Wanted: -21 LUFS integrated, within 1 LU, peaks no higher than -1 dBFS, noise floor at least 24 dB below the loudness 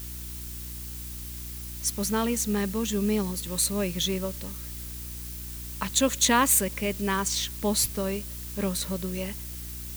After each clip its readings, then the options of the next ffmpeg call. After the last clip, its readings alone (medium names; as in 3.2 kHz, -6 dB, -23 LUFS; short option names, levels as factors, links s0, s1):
hum 60 Hz; highest harmonic 360 Hz; hum level -38 dBFS; noise floor -38 dBFS; noise floor target -52 dBFS; loudness -27.5 LUFS; peak level -8.0 dBFS; loudness target -21.0 LUFS
-> -af "bandreject=f=60:t=h:w=4,bandreject=f=120:t=h:w=4,bandreject=f=180:t=h:w=4,bandreject=f=240:t=h:w=4,bandreject=f=300:t=h:w=4,bandreject=f=360:t=h:w=4"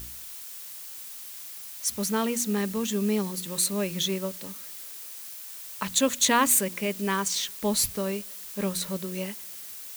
hum not found; noise floor -41 dBFS; noise floor target -52 dBFS
-> -af "afftdn=nr=11:nf=-41"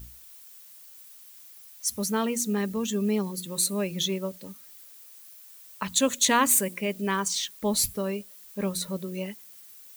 noise floor -50 dBFS; noise floor target -51 dBFS
-> -af "afftdn=nr=6:nf=-50"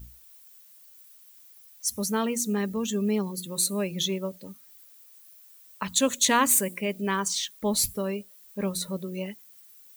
noise floor -53 dBFS; loudness -27.0 LUFS; peak level -8.5 dBFS; loudness target -21.0 LUFS
-> -af "volume=2"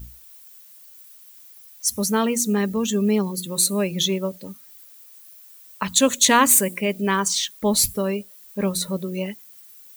loudness -21.0 LUFS; peak level -2.5 dBFS; noise floor -47 dBFS